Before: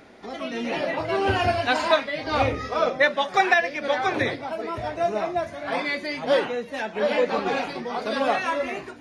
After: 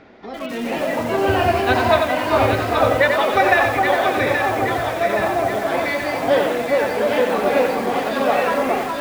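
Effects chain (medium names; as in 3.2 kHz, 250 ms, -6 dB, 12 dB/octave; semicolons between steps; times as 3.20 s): distance through air 160 m; on a send: echo whose repeats swap between lows and highs 412 ms, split 1.3 kHz, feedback 77%, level -2.5 dB; on the sum: bit-crushed delay 90 ms, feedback 35%, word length 6-bit, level -5 dB; trim +3.5 dB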